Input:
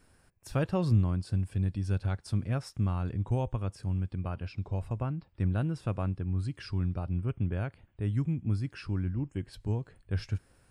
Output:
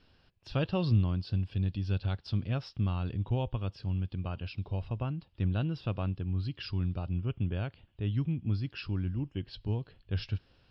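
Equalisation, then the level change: air absorption 240 m; band shelf 3800 Hz +14.5 dB 1.2 oct; -1.0 dB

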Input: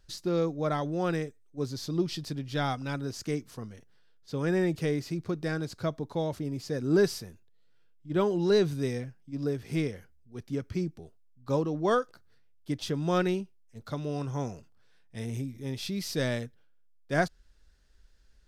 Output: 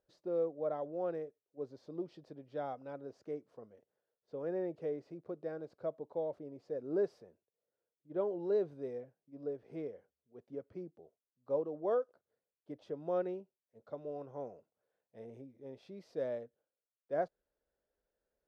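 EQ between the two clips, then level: band-pass 550 Hz, Q 2.7; -2.5 dB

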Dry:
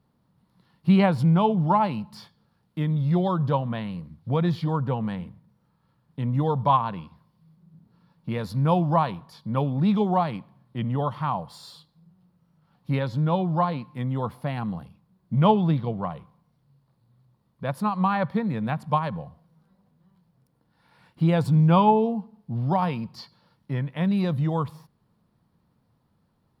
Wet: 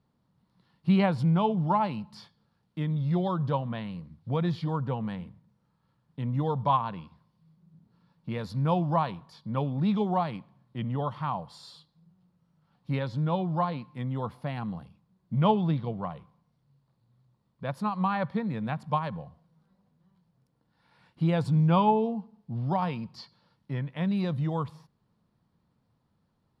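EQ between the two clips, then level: air absorption 63 m; high shelf 4200 Hz +6.5 dB; -4.5 dB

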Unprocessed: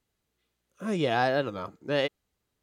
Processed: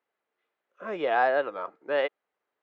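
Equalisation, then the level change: Butterworth band-pass 1000 Hz, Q 0.6; +3.0 dB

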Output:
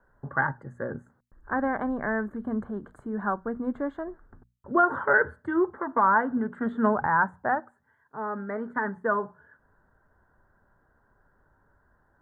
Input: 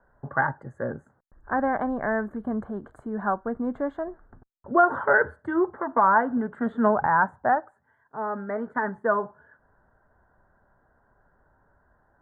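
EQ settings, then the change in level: bell 690 Hz -6 dB 0.74 oct; notches 60/120/180/240 Hz; 0.0 dB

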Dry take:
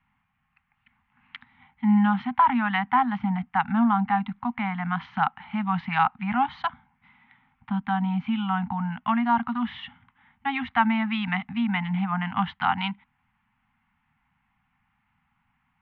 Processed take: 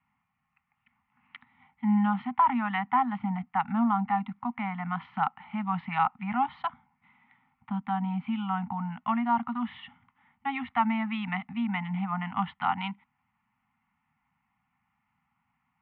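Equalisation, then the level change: HPF 140 Hz 6 dB/oct; LPF 2600 Hz 12 dB/oct; notch 1600 Hz, Q 5.6; -3.0 dB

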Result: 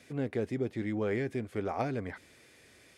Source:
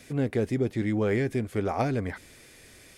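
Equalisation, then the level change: HPF 67 Hz; tone controls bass -3 dB, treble -2 dB; high shelf 9300 Hz -7.5 dB; -5.0 dB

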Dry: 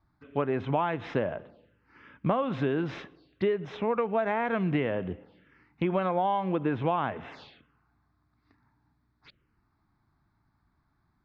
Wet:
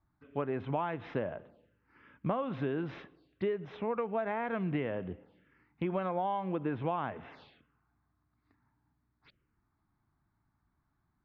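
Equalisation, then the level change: air absorption 140 m; -5.5 dB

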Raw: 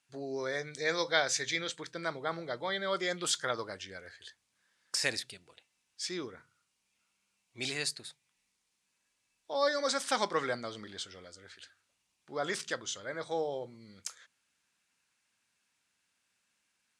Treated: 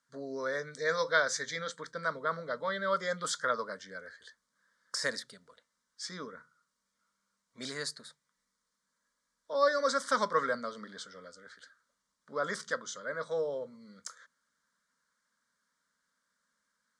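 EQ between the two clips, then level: air absorption 51 m; bell 1300 Hz +4 dB 1.6 oct; fixed phaser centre 520 Hz, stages 8; +2.0 dB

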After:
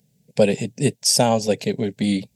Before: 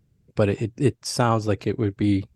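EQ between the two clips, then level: HPF 120 Hz 12 dB/oct; high shelf 4200 Hz +9 dB; fixed phaser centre 330 Hz, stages 6; +6.5 dB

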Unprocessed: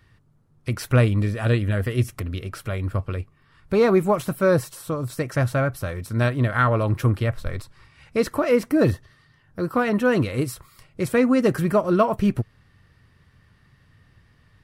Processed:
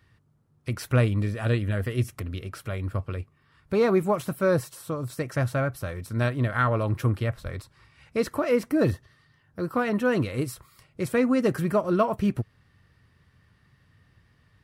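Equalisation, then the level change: HPF 41 Hz; -4.0 dB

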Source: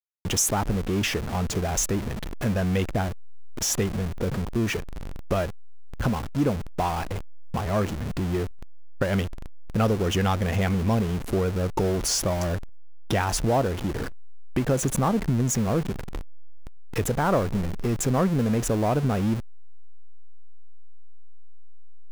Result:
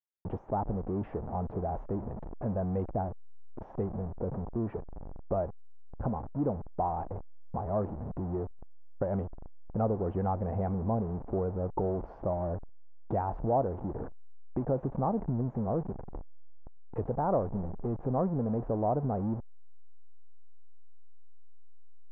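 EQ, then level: ladder low-pass 980 Hz, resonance 40%; 0.0 dB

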